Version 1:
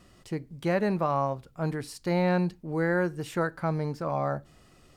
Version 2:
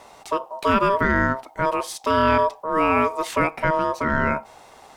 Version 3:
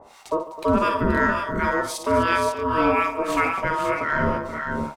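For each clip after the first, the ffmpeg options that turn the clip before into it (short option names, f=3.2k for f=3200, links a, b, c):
-filter_complex "[0:a]asplit=2[a][b];[b]alimiter=level_in=2dB:limit=-24dB:level=0:latency=1:release=110,volume=-2dB,volume=-2dB[c];[a][c]amix=inputs=2:normalize=0,aeval=exprs='val(0)*sin(2*PI*790*n/s)':c=same,volume=7.5dB"
-filter_complex "[0:a]acrossover=split=1000[a][b];[a]aeval=exprs='val(0)*(1-1/2+1/2*cos(2*PI*2.8*n/s))':c=same[c];[b]aeval=exprs='val(0)*(1-1/2-1/2*cos(2*PI*2.8*n/s))':c=same[d];[c][d]amix=inputs=2:normalize=0,aecho=1:1:55|144|255|477|520|547:0.422|0.141|0.188|0.266|0.398|0.355,volume=2.5dB"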